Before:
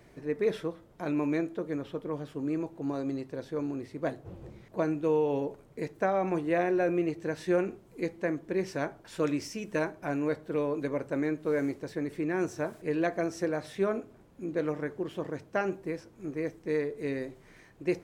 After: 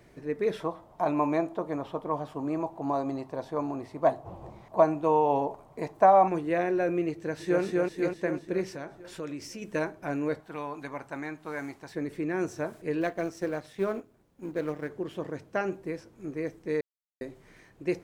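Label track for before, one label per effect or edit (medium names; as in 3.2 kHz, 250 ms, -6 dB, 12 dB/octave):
0.600000	6.280000	high-order bell 840 Hz +13 dB 1.1 oct
7.140000	7.630000	echo throw 250 ms, feedback 60%, level -1 dB
8.680000	9.620000	compression 2:1, threshold -39 dBFS
10.400000	11.940000	resonant low shelf 630 Hz -6.5 dB, Q 3
13.010000	14.900000	companding laws mixed up coded by A
16.810000	17.210000	mute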